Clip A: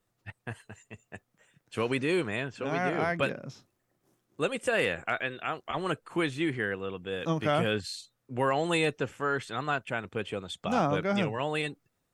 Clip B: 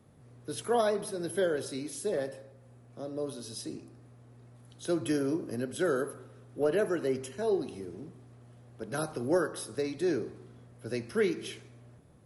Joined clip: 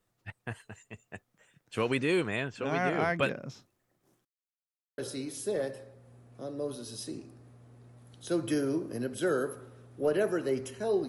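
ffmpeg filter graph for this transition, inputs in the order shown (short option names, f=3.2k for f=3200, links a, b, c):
-filter_complex "[0:a]apad=whole_dur=11.08,atrim=end=11.08,asplit=2[a][b];[a]atrim=end=4.25,asetpts=PTS-STARTPTS,afade=t=out:st=4.246:d=0.004:c=hsin[c];[b]atrim=start=4.25:end=4.98,asetpts=PTS-STARTPTS,volume=0[d];[1:a]atrim=start=1.56:end=7.66,asetpts=PTS-STARTPTS,afade=t=in:d=0.004:c=hsin[e];[c][d][e]concat=n=3:v=0:a=1"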